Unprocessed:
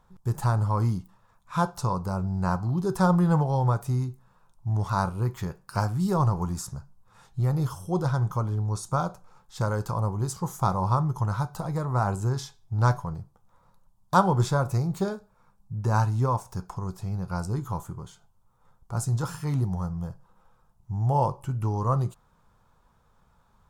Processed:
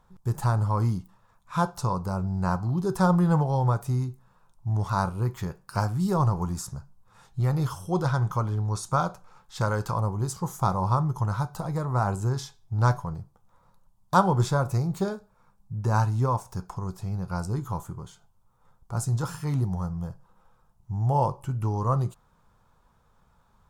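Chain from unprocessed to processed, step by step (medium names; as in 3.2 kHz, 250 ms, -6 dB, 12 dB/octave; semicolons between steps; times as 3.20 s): 7.40–10.01 s: peaking EQ 2.3 kHz +5 dB 2.5 oct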